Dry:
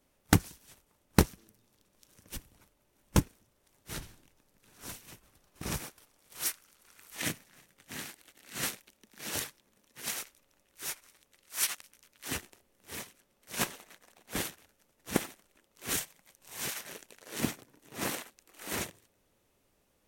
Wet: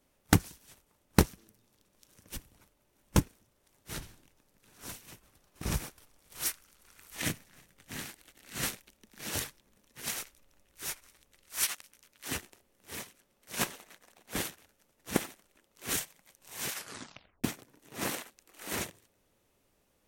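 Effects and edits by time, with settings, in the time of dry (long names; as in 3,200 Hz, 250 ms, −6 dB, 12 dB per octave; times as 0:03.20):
0:05.65–0:11.64: low-shelf EQ 98 Hz +11.5 dB
0:16.72: tape stop 0.72 s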